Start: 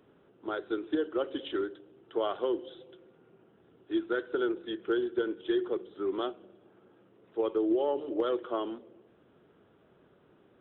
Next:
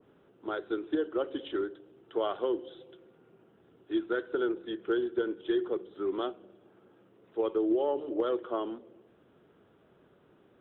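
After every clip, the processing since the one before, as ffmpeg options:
ffmpeg -i in.wav -af "adynamicequalizer=threshold=0.00398:dfrequency=1700:dqfactor=0.7:tfrequency=1700:tqfactor=0.7:attack=5:release=100:ratio=0.375:range=2:mode=cutabove:tftype=highshelf" out.wav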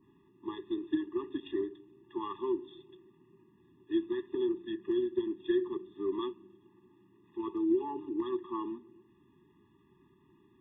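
ffmpeg -i in.wav -af "afftfilt=real='re*eq(mod(floor(b*sr/1024/410),2),0)':imag='im*eq(mod(floor(b*sr/1024/410),2),0)':win_size=1024:overlap=0.75" out.wav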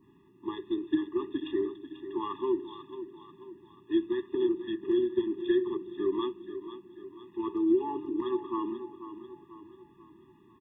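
ffmpeg -i in.wav -af "aecho=1:1:490|980|1470|1960|2450:0.251|0.123|0.0603|0.0296|0.0145,volume=3.5dB" out.wav

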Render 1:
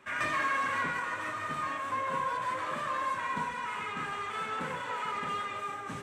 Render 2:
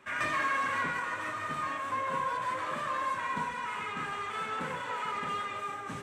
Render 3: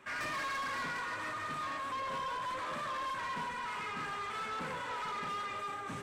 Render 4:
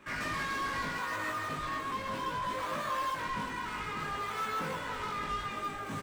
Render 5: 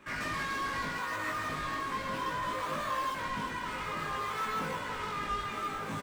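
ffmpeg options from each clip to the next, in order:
ffmpeg -i in.wav -af anull out.wav
ffmpeg -i in.wav -af "asoftclip=type=tanh:threshold=-34.5dB" out.wav
ffmpeg -i in.wav -filter_complex "[0:a]asplit=2[link_01][link_02];[link_02]acrusher=samples=39:mix=1:aa=0.000001:lfo=1:lforange=62.4:lforate=0.61,volume=-9.5dB[link_03];[link_01][link_03]amix=inputs=2:normalize=0,asplit=2[link_04][link_05];[link_05]adelay=19,volume=-3dB[link_06];[link_04][link_06]amix=inputs=2:normalize=0" out.wav
ffmpeg -i in.wav -af "aecho=1:1:1184:0.422" out.wav

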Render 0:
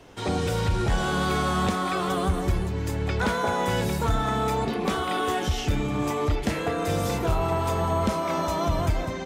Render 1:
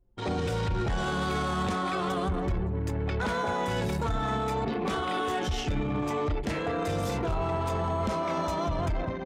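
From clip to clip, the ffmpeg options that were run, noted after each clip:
ffmpeg -i in.wav -af "anlmdn=15.8,alimiter=limit=-20.5dB:level=0:latency=1:release=14,volume=-1.5dB" out.wav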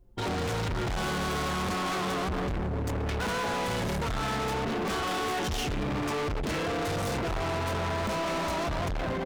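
ffmpeg -i in.wav -af "asoftclip=type=hard:threshold=-37.5dB,volume=8.5dB" out.wav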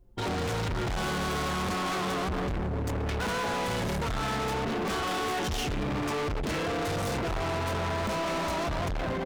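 ffmpeg -i in.wav -af anull out.wav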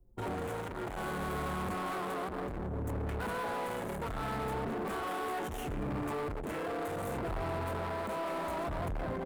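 ffmpeg -i in.wav -filter_complex "[0:a]acrossover=split=220|7300[link_01][link_02][link_03];[link_01]tremolo=f=0.67:d=0.75[link_04];[link_02]adynamicsmooth=sensitivity=2:basefreq=1100[link_05];[link_04][link_05][link_03]amix=inputs=3:normalize=0,volume=-4.5dB" out.wav

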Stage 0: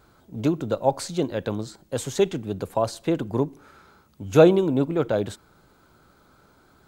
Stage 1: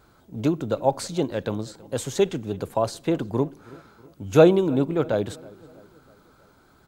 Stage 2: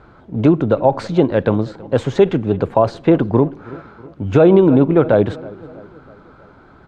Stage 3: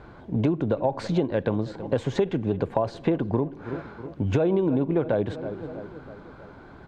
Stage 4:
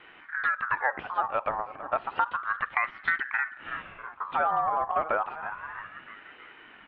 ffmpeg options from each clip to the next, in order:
ffmpeg -i in.wav -filter_complex "[0:a]asplit=2[link_01][link_02];[link_02]adelay=323,lowpass=frequency=3200:poles=1,volume=-22dB,asplit=2[link_03][link_04];[link_04]adelay=323,lowpass=frequency=3200:poles=1,volume=0.52,asplit=2[link_05][link_06];[link_06]adelay=323,lowpass=frequency=3200:poles=1,volume=0.52,asplit=2[link_07][link_08];[link_08]adelay=323,lowpass=frequency=3200:poles=1,volume=0.52[link_09];[link_01][link_03][link_05][link_07][link_09]amix=inputs=5:normalize=0" out.wav
ffmpeg -i in.wav -af "lowpass=2200,alimiter=level_in=13dB:limit=-1dB:release=50:level=0:latency=1,volume=-1dB" out.wav
ffmpeg -i in.wav -af "bandreject=frequency=1300:width=7.9,acompressor=threshold=-22dB:ratio=4" out.wav
ffmpeg -i in.wav -af "highpass=frequency=220:width_type=q:width=0.5412,highpass=frequency=220:width_type=q:width=1.307,lowpass=frequency=2400:width_type=q:width=0.5176,lowpass=frequency=2400:width_type=q:width=0.7071,lowpass=frequency=2400:width_type=q:width=1.932,afreqshift=-160,aeval=exprs='val(0)*sin(2*PI*1300*n/s+1300*0.3/0.31*sin(2*PI*0.31*n/s))':channel_layout=same" out.wav

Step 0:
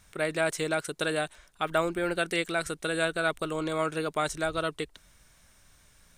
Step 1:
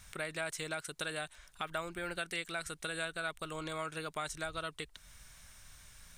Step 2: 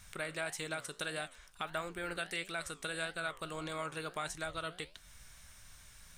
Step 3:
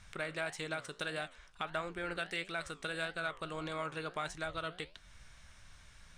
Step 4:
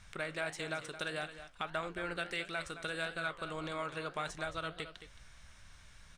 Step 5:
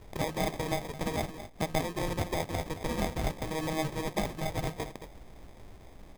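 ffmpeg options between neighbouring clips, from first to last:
ffmpeg -i in.wav -af "equalizer=frequency=360:width_type=o:width=2.2:gain=-9,acompressor=threshold=-49dB:ratio=2,volume=4.5dB" out.wav
ffmpeg -i in.wav -af "flanger=delay=9.3:depth=9.8:regen=79:speed=1.6:shape=triangular,volume=4dB" out.wav
ffmpeg -i in.wav -af "adynamicsmooth=sensitivity=4.5:basefreq=5800,volume=1dB" out.wav
ffmpeg -i in.wav -af "aecho=1:1:219:0.251" out.wav
ffmpeg -i in.wav -af "acrusher=samples=31:mix=1:aa=0.000001,volume=7dB" out.wav

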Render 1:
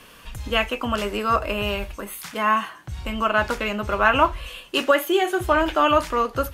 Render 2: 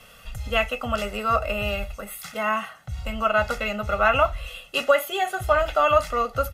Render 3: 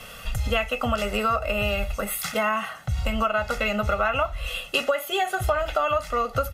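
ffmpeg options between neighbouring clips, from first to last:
ffmpeg -i in.wav -af "aecho=1:1:1.5:0.95,volume=-4.5dB" out.wav
ffmpeg -i in.wav -af "acompressor=threshold=-29dB:ratio=6,volume=8dB" out.wav

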